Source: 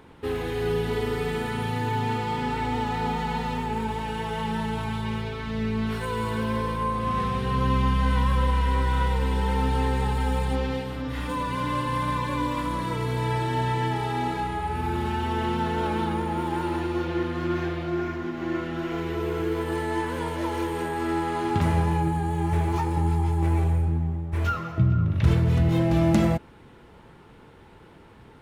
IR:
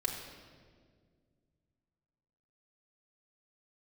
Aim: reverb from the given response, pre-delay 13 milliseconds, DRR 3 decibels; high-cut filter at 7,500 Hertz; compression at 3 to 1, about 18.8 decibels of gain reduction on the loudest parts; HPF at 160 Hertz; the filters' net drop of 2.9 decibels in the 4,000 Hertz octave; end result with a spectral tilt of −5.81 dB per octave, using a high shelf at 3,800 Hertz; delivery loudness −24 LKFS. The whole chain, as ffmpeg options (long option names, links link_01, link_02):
-filter_complex "[0:a]highpass=160,lowpass=7500,highshelf=frequency=3800:gain=7.5,equalizer=frequency=4000:width_type=o:gain=-8.5,acompressor=threshold=-45dB:ratio=3,asplit=2[link_01][link_02];[1:a]atrim=start_sample=2205,adelay=13[link_03];[link_02][link_03]afir=irnorm=-1:irlink=0,volume=-7dB[link_04];[link_01][link_04]amix=inputs=2:normalize=0,volume=17dB"